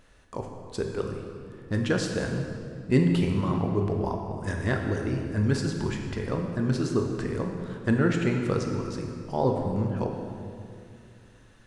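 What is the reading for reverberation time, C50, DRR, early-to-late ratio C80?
2.3 s, 3.5 dB, 2.0 dB, 5.0 dB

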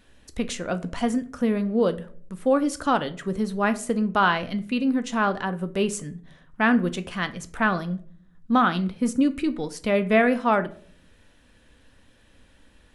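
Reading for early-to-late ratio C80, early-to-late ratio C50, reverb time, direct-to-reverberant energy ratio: 21.5 dB, 17.0 dB, 0.50 s, 10.0 dB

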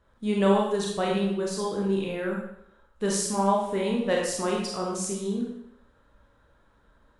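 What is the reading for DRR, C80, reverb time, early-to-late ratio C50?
-2.5 dB, 5.0 dB, 0.75 s, 1.5 dB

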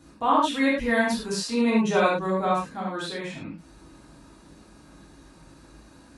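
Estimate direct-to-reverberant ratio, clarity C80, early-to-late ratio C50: -6.5 dB, 6.0 dB, 1.0 dB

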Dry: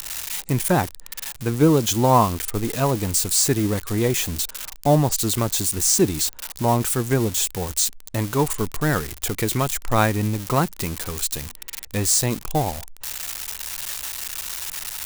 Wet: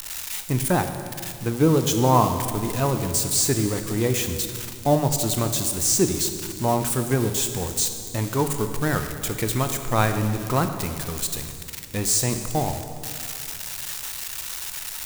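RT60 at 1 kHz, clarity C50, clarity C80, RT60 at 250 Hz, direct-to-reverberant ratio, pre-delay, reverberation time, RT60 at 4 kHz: 2.1 s, 8.0 dB, 8.5 dB, 2.8 s, 7.0 dB, 15 ms, 2.3 s, 2.0 s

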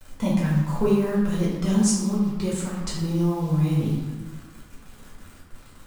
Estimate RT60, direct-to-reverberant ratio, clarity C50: 1.3 s, -7.0 dB, 1.0 dB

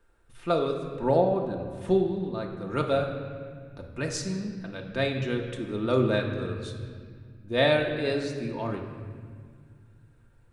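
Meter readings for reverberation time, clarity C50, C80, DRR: 1.9 s, 6.0 dB, 7.0 dB, 1.0 dB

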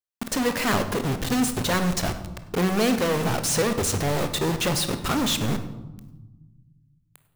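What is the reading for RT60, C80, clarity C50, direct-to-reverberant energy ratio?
1.2 s, 12.0 dB, 9.5 dB, 8.0 dB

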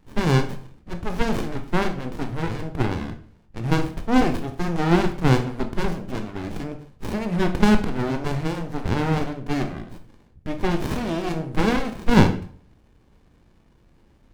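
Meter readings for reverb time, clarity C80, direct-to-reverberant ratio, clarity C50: 0.50 s, 15.5 dB, 5.5 dB, 11.0 dB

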